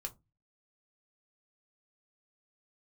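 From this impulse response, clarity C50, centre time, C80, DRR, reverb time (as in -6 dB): 21.0 dB, 6 ms, 29.5 dB, 2.5 dB, 0.20 s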